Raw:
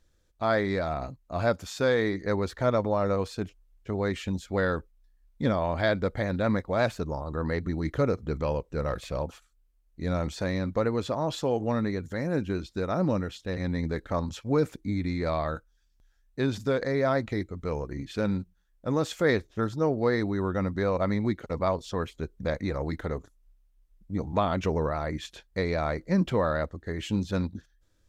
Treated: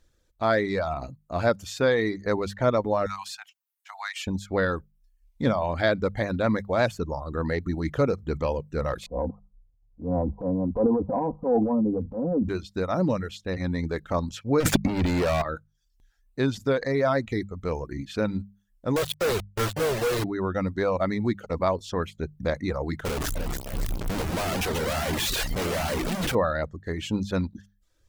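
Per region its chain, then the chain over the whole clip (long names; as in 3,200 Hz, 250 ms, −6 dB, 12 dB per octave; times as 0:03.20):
0:03.06–0:04.27: Butterworth high-pass 750 Hz 72 dB per octave + spectral tilt +1.5 dB per octave
0:09.06–0:12.49: Butterworth low-pass 1,000 Hz 72 dB per octave + comb filter 4 ms, depth 85% + transient designer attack −9 dB, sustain +8 dB
0:14.60–0:15.42: leveller curve on the samples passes 5 + compressor whose output falls as the input rises −24 dBFS
0:18.96–0:20.24: amplitude modulation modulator 210 Hz, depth 40% + phaser with its sweep stopped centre 1,300 Hz, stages 8 + log-companded quantiser 2 bits
0:23.05–0:26.35: sign of each sample alone + delay with pitch and tempo change per echo 305 ms, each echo +2 semitones, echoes 2, each echo −6 dB
whole clip: reverb reduction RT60 0.58 s; mains-hum notches 50/100/150/200 Hz; level +3 dB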